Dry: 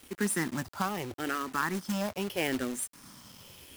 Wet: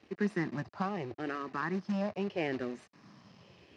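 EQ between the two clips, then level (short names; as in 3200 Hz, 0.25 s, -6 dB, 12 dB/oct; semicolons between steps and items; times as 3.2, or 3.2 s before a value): air absorption 290 m; speaker cabinet 140–7900 Hz, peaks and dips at 260 Hz -8 dB, 510 Hz -4 dB, 920 Hz -6 dB, 1400 Hz -9 dB, 2200 Hz -4 dB, 3300 Hz -10 dB; +2.5 dB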